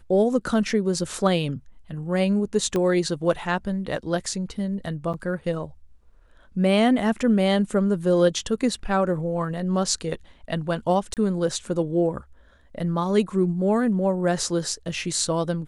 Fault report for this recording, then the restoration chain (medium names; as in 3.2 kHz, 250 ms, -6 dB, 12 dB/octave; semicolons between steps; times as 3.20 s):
2.76 s: pop -13 dBFS
5.13–5.14 s: dropout 7.7 ms
11.14–11.17 s: dropout 28 ms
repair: de-click; interpolate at 5.13 s, 7.7 ms; interpolate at 11.14 s, 28 ms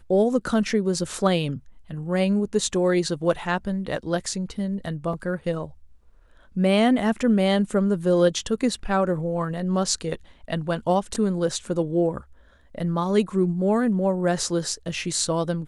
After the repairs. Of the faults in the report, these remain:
2.76 s: pop